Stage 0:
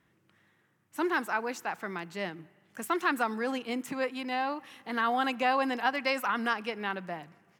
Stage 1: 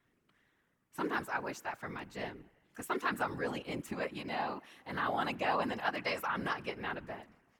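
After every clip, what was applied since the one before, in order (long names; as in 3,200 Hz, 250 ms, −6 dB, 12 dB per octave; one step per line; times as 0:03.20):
mains-hum notches 50/100/150 Hz
random phases in short frames
level −5.5 dB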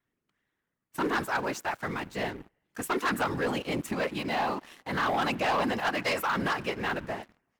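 leveller curve on the samples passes 3
level −2 dB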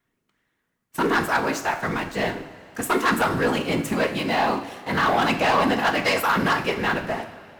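coupled-rooms reverb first 0.52 s, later 3 s, from −15 dB, DRR 5.5 dB
level +6.5 dB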